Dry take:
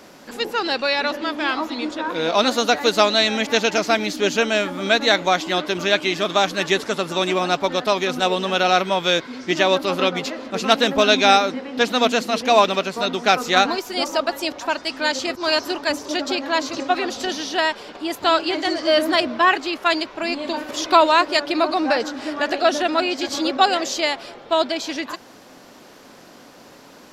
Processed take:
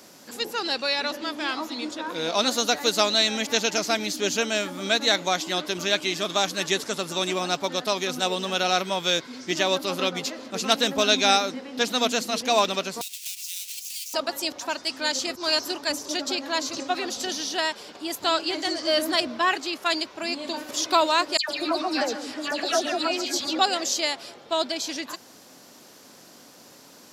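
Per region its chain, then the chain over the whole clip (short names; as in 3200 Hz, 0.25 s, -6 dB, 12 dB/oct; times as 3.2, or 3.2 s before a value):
13.01–14.14 half-waves squared off + elliptic high-pass 2500 Hz, stop band 80 dB + compressor, threshold -31 dBFS
21.37–23.59 dispersion lows, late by 0.118 s, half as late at 2000 Hz + echo 0.138 s -13 dB
whole clip: HPF 83 Hz; tone controls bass +2 dB, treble +11 dB; gain -7 dB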